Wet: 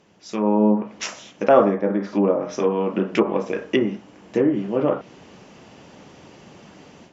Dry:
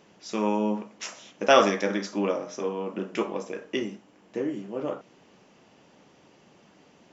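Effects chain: peaking EQ 72 Hz +7 dB 1.8 oct; low-pass that closes with the level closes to 940 Hz, closed at -22 dBFS; level rider gain up to 12 dB; trim -1.5 dB

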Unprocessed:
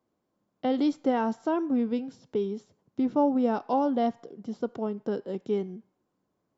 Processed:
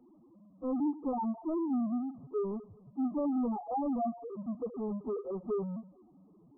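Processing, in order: loudest bins only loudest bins 2; power-law waveshaper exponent 0.5; brick-wall FIR low-pass 1.3 kHz; trim -6.5 dB

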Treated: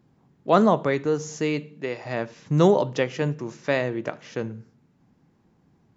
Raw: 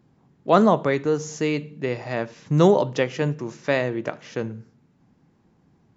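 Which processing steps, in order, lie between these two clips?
1.59–2.04 s: high-pass 160 Hz -> 470 Hz 6 dB/octave; trim -1.5 dB

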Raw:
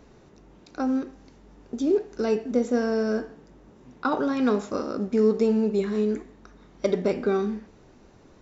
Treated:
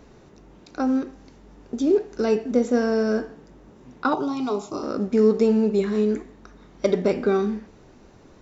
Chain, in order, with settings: 4.14–4.83 s: static phaser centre 340 Hz, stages 8; trim +3 dB

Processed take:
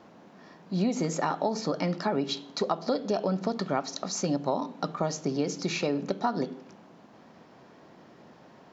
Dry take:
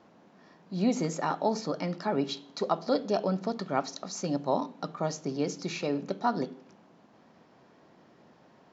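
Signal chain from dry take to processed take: compression 6:1, threshold -29 dBFS, peak gain reduction 8.5 dB; trim +5.5 dB

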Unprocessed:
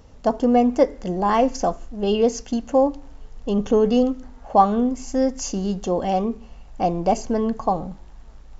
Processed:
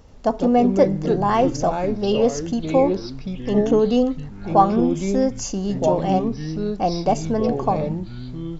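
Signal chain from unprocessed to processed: ever faster or slower copies 85 ms, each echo -4 st, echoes 3, each echo -6 dB

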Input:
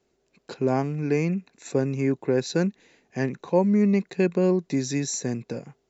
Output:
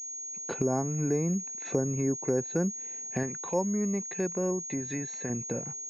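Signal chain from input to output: recorder AGC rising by 18 dB/s; low-pass that closes with the level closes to 1.3 kHz, closed at -19.5 dBFS; 3.23–5.30 s: tilt shelf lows -5.5 dB, about 890 Hz; class-D stage that switches slowly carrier 6.6 kHz; trim -5 dB

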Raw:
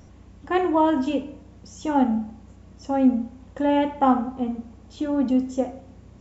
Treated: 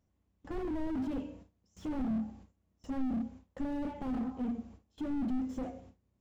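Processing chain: dynamic bell 190 Hz, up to +3 dB, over -28 dBFS, Q 0.83; gate with hold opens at -34 dBFS; slew-rate limiter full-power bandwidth 17 Hz; trim -8 dB

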